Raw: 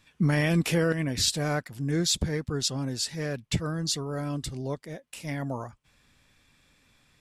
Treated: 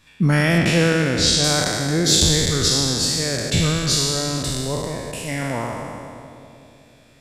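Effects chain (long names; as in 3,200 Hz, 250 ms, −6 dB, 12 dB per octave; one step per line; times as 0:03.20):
peak hold with a decay on every bin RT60 2.25 s
0:00.58–0:01.44: low-pass filter 7,000 Hz 12 dB per octave
on a send: bucket-brigade delay 185 ms, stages 1,024, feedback 73%, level −13.5 dB
on the sum: level +5 dB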